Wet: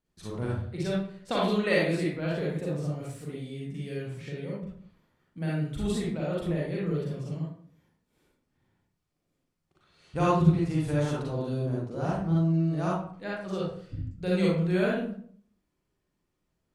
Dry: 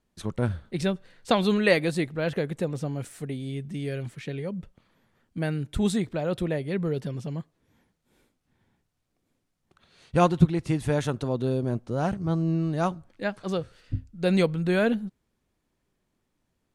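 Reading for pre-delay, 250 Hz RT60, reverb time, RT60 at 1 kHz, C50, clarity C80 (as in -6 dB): 37 ms, 0.65 s, 0.55 s, 0.50 s, -1.0 dB, 4.5 dB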